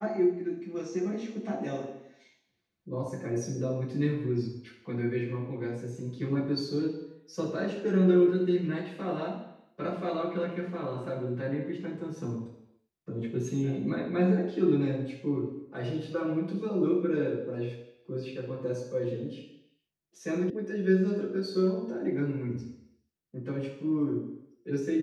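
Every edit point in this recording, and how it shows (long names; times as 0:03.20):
0:20.50: cut off before it has died away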